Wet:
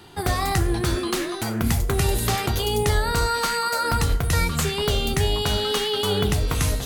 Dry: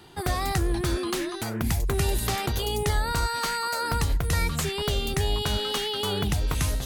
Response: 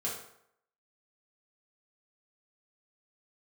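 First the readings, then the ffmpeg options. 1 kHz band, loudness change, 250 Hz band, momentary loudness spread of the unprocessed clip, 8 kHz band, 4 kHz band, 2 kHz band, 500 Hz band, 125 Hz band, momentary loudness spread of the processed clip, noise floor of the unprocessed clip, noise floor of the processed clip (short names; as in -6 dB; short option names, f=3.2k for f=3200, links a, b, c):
+4.0 dB, +4.0 dB, +4.0 dB, 2 LU, +4.0 dB, +4.0 dB, +4.0 dB, +5.0 dB, +4.0 dB, 3 LU, -33 dBFS, -29 dBFS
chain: -filter_complex "[0:a]asplit=2[a][b];[1:a]atrim=start_sample=2205,adelay=10[c];[b][c]afir=irnorm=-1:irlink=0,volume=-12dB[d];[a][d]amix=inputs=2:normalize=0,volume=3.5dB"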